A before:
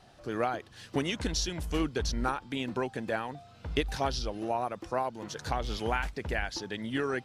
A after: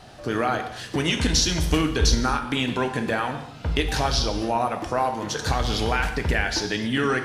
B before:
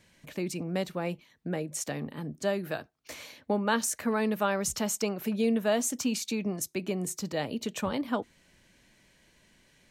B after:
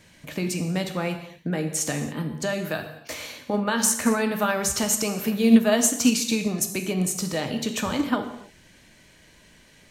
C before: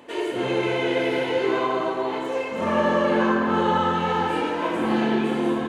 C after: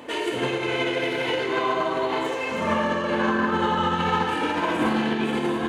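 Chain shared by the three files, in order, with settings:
brickwall limiter −21.5 dBFS
dynamic equaliser 450 Hz, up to −5 dB, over −40 dBFS, Q 0.72
reverb whose tail is shaped and stops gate 310 ms falling, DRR 5 dB
expander for the loud parts 2.5 to 1, over −32 dBFS
loudness normalisation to −24 LKFS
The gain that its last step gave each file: +15.0, +17.0, +10.0 decibels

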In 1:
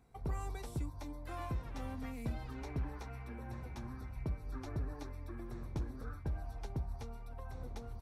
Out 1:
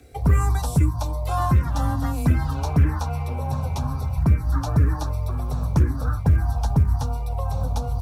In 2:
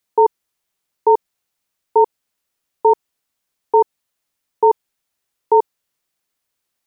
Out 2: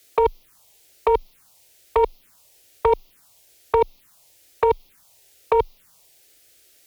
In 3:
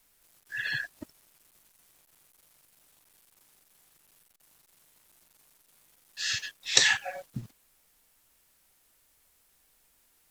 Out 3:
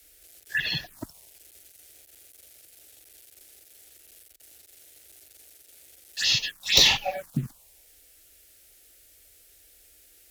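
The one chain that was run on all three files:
compressor whose output falls as the input rises −18 dBFS, ratio −0.5
tube saturation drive 18 dB, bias 0.25
phaser swept by the level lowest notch 160 Hz, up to 1,600 Hz, full sweep at −30.5 dBFS
floating-point word with a short mantissa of 6 bits
frequency shifter +16 Hz
loudness normalisation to −23 LKFS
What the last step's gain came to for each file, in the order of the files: +22.0, +11.5, +11.5 decibels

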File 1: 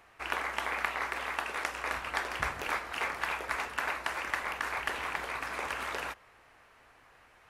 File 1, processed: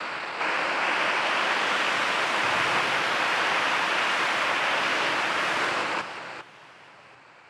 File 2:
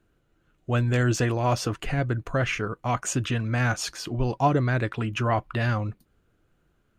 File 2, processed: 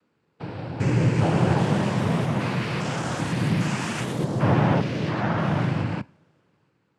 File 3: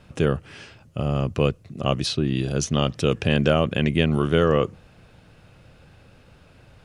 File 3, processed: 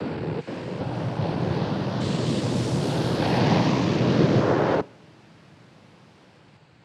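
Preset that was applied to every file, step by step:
spectrum averaged block by block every 400 ms
high-shelf EQ 4,000 Hz −5 dB
cochlear-implant simulation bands 8
delay with pitch and tempo change per echo 470 ms, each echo +2 semitones, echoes 3
coupled-rooms reverb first 0.44 s, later 2.4 s, from −20 dB, DRR 19.5 dB
loudness normalisation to −24 LKFS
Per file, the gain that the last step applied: +11.5, +3.5, +0.5 decibels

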